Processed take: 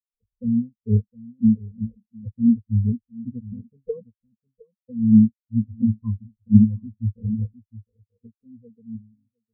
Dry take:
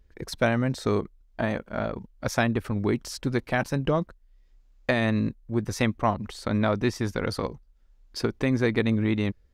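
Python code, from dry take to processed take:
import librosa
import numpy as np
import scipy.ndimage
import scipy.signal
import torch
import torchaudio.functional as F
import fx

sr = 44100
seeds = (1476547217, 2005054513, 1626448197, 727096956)

p1 = fx.fade_out_tail(x, sr, length_s=3.05)
p2 = p1 + fx.echo_single(p1, sr, ms=710, db=-7.5, dry=0)
p3 = fx.wow_flutter(p2, sr, seeds[0], rate_hz=2.1, depth_cents=26.0)
p4 = fx.ripple_eq(p3, sr, per_octave=0.91, db=17)
p5 = fx.sample_hold(p4, sr, seeds[1], rate_hz=2200.0, jitter_pct=0)
p6 = p4 + (p5 * librosa.db_to_amplitude(-4.5))
p7 = fx.rider(p6, sr, range_db=4, speed_s=0.5)
p8 = fx.low_shelf(p7, sr, hz=270.0, db=9.0)
p9 = fx.spectral_expand(p8, sr, expansion=4.0)
y = p9 * librosa.db_to_amplitude(-1.0)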